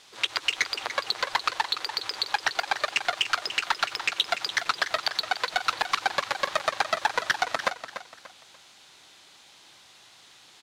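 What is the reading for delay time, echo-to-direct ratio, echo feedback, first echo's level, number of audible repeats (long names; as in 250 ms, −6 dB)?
292 ms, −10.5 dB, 32%, −11.0 dB, 3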